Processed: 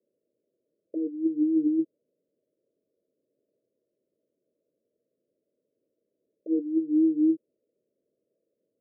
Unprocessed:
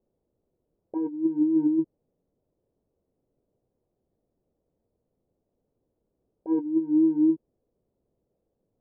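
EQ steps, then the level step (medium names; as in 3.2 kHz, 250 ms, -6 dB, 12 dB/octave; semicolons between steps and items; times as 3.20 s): high-pass 320 Hz 12 dB/octave; Chebyshev low-pass 650 Hz, order 10; +2.0 dB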